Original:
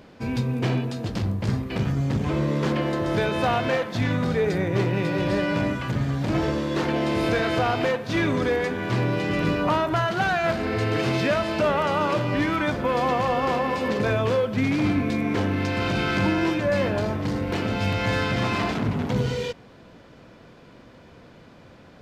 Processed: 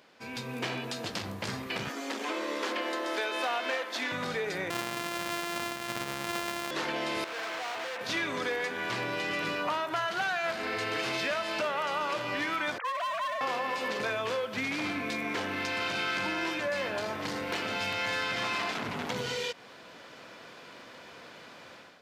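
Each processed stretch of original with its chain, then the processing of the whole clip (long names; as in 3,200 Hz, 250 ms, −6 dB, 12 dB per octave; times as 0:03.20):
0:01.89–0:04.12: hard clipping −14.5 dBFS + Butterworth high-pass 230 Hz 96 dB per octave
0:04.70–0:06.71: samples sorted by size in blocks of 128 samples + bass and treble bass +2 dB, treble −5 dB
0:07.24–0:08.01: linear delta modulator 16 kbit/s, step −32.5 dBFS + resonant band-pass 1,100 Hz, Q 0.58 + hard clipping −33.5 dBFS
0:12.78–0:13.41: three sine waves on the formant tracks + high-pass filter 710 Hz 24 dB per octave + hard clipping −25.5 dBFS
whole clip: automatic gain control; high-pass filter 1,300 Hz 6 dB per octave; downward compressor 2.5 to 1, threshold −29 dBFS; level −3.5 dB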